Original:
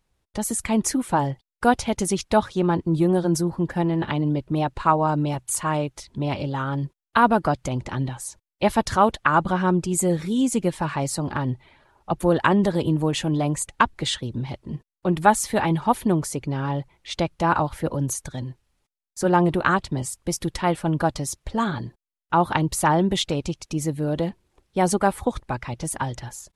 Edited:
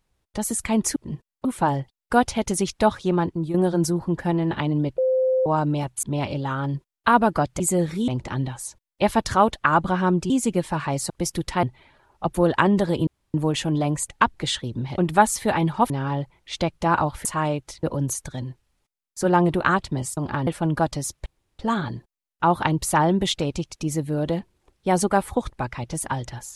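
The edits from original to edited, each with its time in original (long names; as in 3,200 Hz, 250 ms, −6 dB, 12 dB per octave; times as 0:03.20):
0:02.56–0:03.05: fade out equal-power, to −10.5 dB
0:04.49–0:04.97: beep over 518 Hz −17 dBFS
0:05.54–0:06.12: move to 0:17.83
0:09.91–0:10.39: move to 0:07.69
0:11.19–0:11.49: swap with 0:20.17–0:20.70
0:12.93: splice in room tone 0.27 s
0:14.57–0:15.06: move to 0:00.96
0:15.98–0:16.48: remove
0:21.49: splice in room tone 0.33 s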